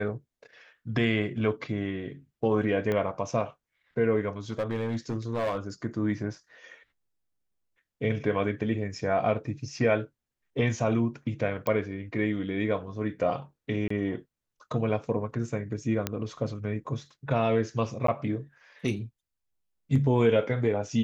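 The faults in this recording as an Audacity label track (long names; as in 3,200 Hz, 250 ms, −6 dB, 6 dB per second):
2.920000	2.920000	click −17 dBFS
4.500000	5.570000	clipping −24.5 dBFS
11.670000	11.670000	click −16 dBFS
13.880000	13.900000	drop-out 24 ms
16.070000	16.070000	click −12 dBFS
18.070000	18.080000	drop-out 13 ms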